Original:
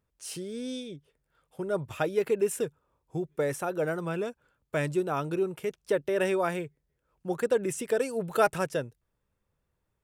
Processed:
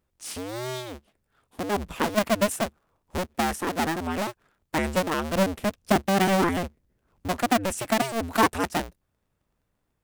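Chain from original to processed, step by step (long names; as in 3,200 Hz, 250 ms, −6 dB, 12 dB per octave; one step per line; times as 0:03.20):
sub-harmonics by changed cycles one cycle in 2, inverted
0:05.35–0:07.28: low-shelf EQ 370 Hz +6 dB
level +3 dB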